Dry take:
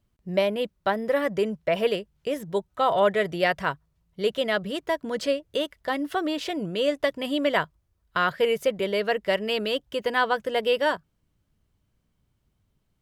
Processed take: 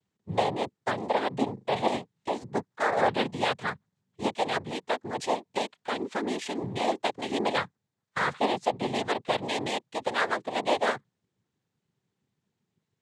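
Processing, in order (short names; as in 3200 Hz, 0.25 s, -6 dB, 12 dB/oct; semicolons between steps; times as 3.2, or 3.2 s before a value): noise vocoder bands 6; 1.53–1.95 flutter echo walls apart 6.7 m, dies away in 0.23 s; gain -3.5 dB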